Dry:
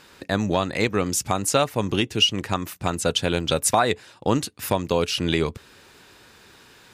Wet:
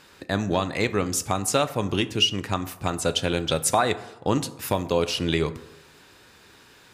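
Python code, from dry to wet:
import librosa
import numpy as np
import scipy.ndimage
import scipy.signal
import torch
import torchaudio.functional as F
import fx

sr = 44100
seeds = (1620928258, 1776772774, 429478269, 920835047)

y = fx.rev_plate(x, sr, seeds[0], rt60_s=0.89, hf_ratio=0.45, predelay_ms=0, drr_db=11.5)
y = F.gain(torch.from_numpy(y), -2.0).numpy()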